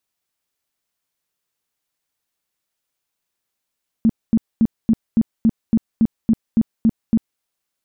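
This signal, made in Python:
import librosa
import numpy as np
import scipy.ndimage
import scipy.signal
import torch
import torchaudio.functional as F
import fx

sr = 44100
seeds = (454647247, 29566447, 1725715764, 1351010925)

y = fx.tone_burst(sr, hz=225.0, cycles=10, every_s=0.28, bursts=12, level_db=-10.0)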